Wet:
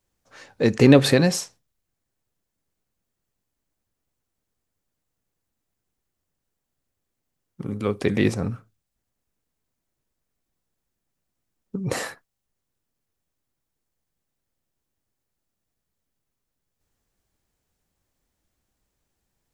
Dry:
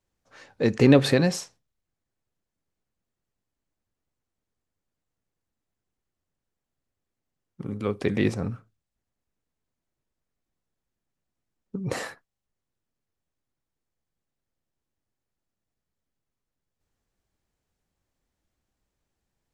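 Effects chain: high shelf 7500 Hz +7 dB; gain +3 dB

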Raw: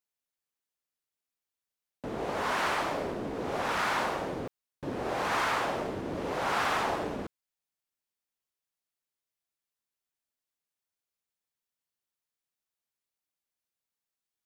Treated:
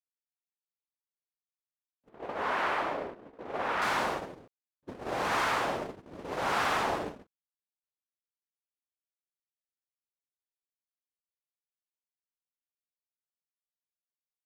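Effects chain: gate -32 dBFS, range -39 dB; 2.09–3.82 tone controls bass -7 dB, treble -14 dB

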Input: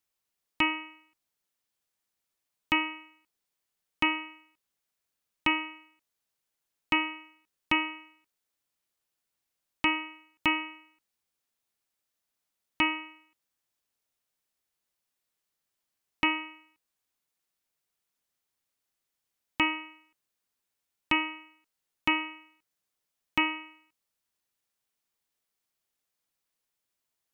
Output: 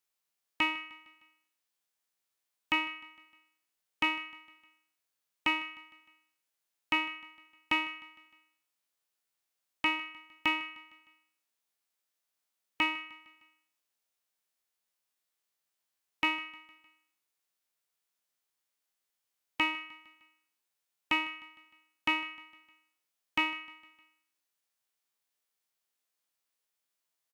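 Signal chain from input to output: spectral trails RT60 0.43 s; low shelf 280 Hz -9.5 dB; on a send: feedback echo 0.153 s, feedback 52%, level -21 dB; on the sum: gain -2.5 dB

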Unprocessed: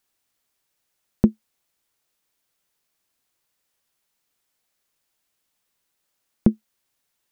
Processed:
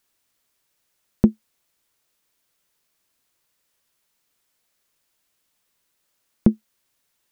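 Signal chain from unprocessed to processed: notch 780 Hz, Q 14; in parallel at -2.5 dB: limiter -10.5 dBFS, peak gain reduction 8 dB; on the sum: gain -1.5 dB

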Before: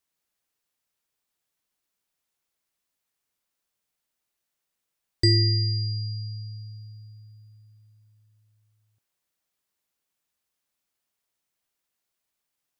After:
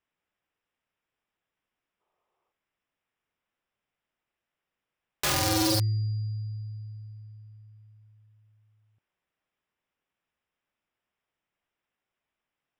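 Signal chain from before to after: spectral gain 2–2.51, 330–1300 Hz +11 dB; polynomial smoothing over 25 samples; wrapped overs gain 23.5 dB; gain +2.5 dB

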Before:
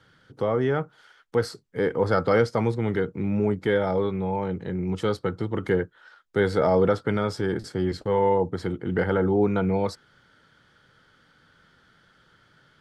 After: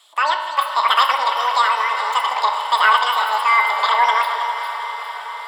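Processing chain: regenerating reverse delay 0.474 s, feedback 63%, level -10.5 dB; HPF 320 Hz 24 dB/oct; dynamic EQ 4700 Hz, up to -7 dB, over -51 dBFS, Q 0.95; diffused feedback echo 1.094 s, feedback 72%, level -12 dB; reverb RT60 3.6 s, pre-delay 4 ms, DRR 6 dB; speed mistake 33 rpm record played at 78 rpm; gain +7 dB

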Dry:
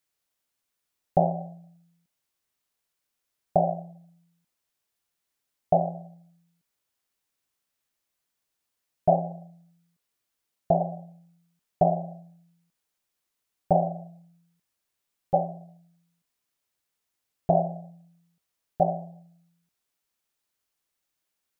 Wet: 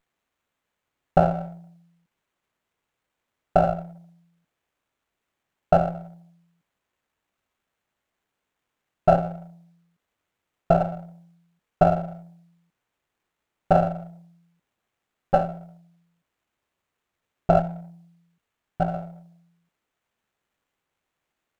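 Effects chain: 17.59–18.94 bell 500 Hz -10 dB 1.2 oct; running maximum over 9 samples; gain +4 dB

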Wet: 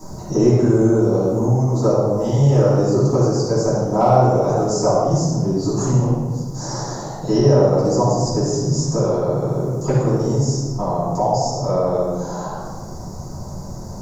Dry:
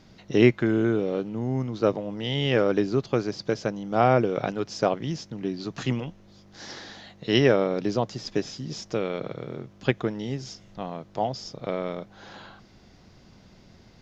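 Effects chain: EQ curve 140 Hz 0 dB, 230 Hz -8 dB, 960 Hz +3 dB, 2200 Hz -25 dB, 3200 Hz -26 dB, 6800 Hz +12 dB; in parallel at +2.5 dB: compressor 6:1, threshold -31 dBFS, peak gain reduction 15 dB; on the sum: hard clip -7.5 dBFS, distortion -43 dB; shoebox room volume 740 m³, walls mixed, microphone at 9.9 m; three-band squash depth 40%; gain -10 dB

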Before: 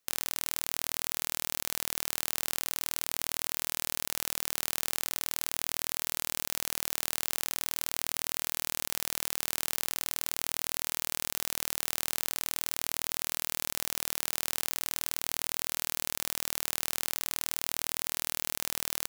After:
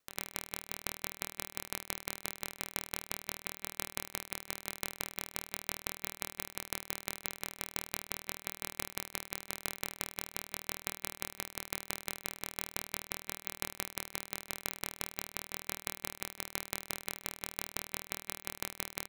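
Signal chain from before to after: high shelf 2500 Hz -8 dB; de-hum 194.5 Hz, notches 21; dB-ramp tremolo decaying 5.8 Hz, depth 22 dB; gain +5.5 dB

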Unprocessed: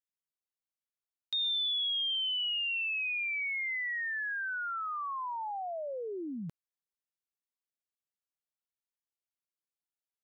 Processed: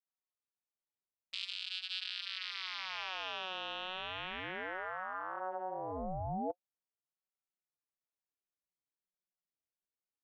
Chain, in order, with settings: 1.44–1.88 spectral limiter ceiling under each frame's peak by 19 dB; vocoder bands 8, square 92.8 Hz; ring modulator with a swept carrier 570 Hz, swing 85%, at 0.27 Hz; gain -2.5 dB

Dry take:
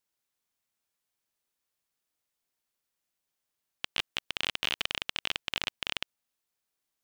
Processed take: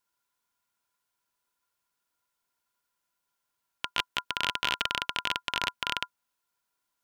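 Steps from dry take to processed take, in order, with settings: small resonant body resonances 1000/1400 Hz, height 18 dB, ringing for 75 ms; gain +1.5 dB

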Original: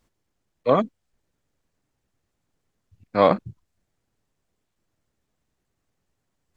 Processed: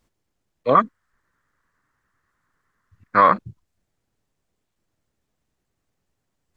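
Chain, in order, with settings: 0.75–3.34 band shelf 1400 Hz +15.5 dB 1.2 oct; limiter -3.5 dBFS, peak gain reduction 6.5 dB

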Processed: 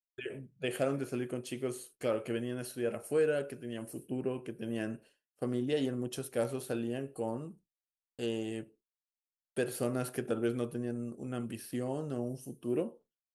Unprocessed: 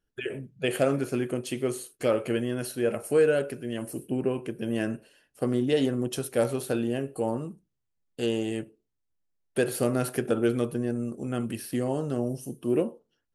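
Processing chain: expander -47 dBFS; gain -7.5 dB

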